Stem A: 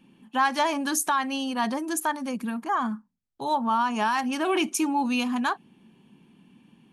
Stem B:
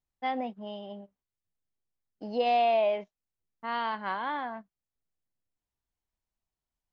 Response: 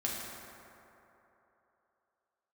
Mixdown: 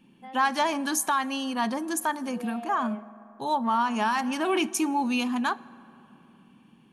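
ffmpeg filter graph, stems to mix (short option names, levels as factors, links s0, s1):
-filter_complex "[0:a]volume=0.841,asplit=2[s0][s1];[s1]volume=0.075[s2];[1:a]highshelf=f=4300:g=-11,alimiter=limit=0.075:level=0:latency=1,volume=0.224,asplit=2[s3][s4];[s4]volume=0.158[s5];[2:a]atrim=start_sample=2205[s6];[s2][s5]amix=inputs=2:normalize=0[s7];[s7][s6]afir=irnorm=-1:irlink=0[s8];[s0][s3][s8]amix=inputs=3:normalize=0"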